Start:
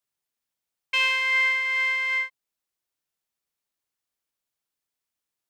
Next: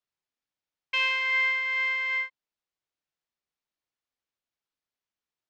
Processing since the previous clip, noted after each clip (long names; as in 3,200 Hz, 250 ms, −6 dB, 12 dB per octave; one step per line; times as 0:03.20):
Bessel low-pass filter 4,700 Hz, order 4
level −2.5 dB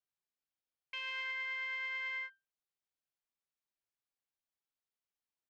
brickwall limiter −26.5 dBFS, peak gain reduction 10.5 dB
tuned comb filter 790 Hz, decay 0.22 s, mix 60%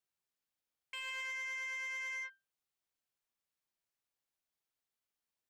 soft clipping −39.5 dBFS, distortion −14 dB
level +2 dB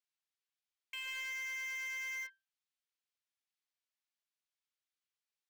resonant band-pass 3,200 Hz, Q 0.66
in parallel at −11 dB: bit reduction 7 bits
on the sum: level −1 dB